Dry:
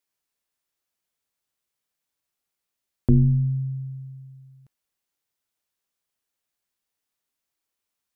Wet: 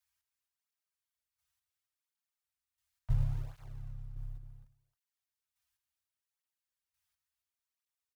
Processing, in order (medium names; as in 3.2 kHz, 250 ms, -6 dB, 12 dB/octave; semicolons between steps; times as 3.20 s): octave divider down 2 oct, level +1 dB; Chebyshev band-stop 120–670 Hz, order 4; peaking EQ 690 Hz -6.5 dB 0.72 oct; comb 3.2 ms, depth 30%; in parallel at -11.5 dB: short-mantissa float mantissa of 2-bit; on the sum: square tremolo 0.72 Hz, depth 65%, duty 15%; on a send: loudspeakers at several distances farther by 20 m -10 dB, 92 m -8 dB; on the sum: cancelling through-zero flanger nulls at 0.7 Hz, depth 5.5 ms